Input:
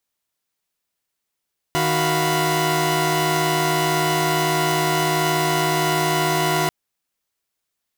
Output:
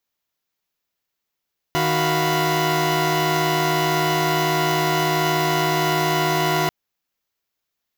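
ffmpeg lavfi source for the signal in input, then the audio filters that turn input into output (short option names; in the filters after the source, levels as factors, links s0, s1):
-f lavfi -i "aevalsrc='0.0891*((2*mod(155.56*t,1)-1)+(2*mod(369.99*t,1)-1)+(2*mod(698.46*t,1)-1)+(2*mod(987.77*t,1)-1))':d=4.94:s=44100"
-af "equalizer=f=9000:t=o:w=0.3:g=-14.5"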